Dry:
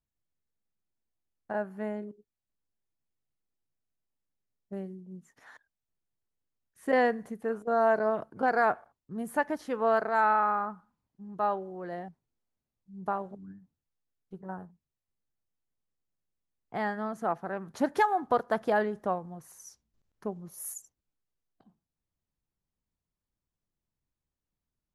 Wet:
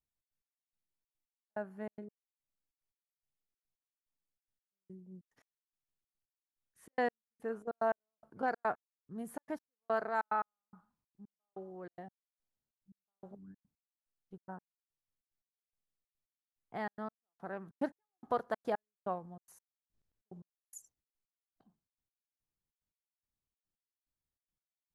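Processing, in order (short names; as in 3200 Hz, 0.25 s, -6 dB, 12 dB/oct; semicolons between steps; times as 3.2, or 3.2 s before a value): step gate "xx.x...x" 144 bpm -60 dB; gain -7 dB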